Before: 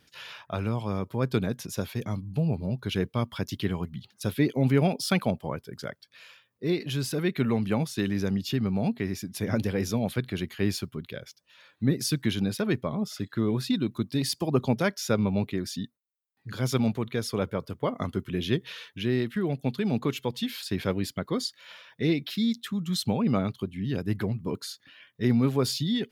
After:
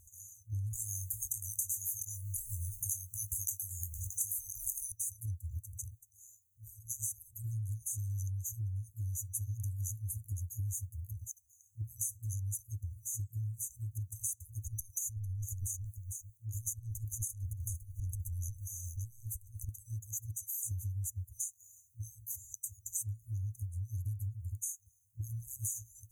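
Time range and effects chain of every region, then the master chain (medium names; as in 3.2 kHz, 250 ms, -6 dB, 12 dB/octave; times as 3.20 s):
0.73–4.92 s: doubling 21 ms -7.5 dB + spectrum-flattening compressor 10:1
14.66–19.69 s: transient shaper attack -4 dB, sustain +10 dB + delay 451 ms -16 dB + compression 16:1, threshold -29 dBFS
whole clip: FFT band-reject 110–6000 Hz; dynamic bell 110 Hz, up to -6 dB, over -49 dBFS, Q 2.4; compression 6:1, threshold -46 dBFS; trim +11 dB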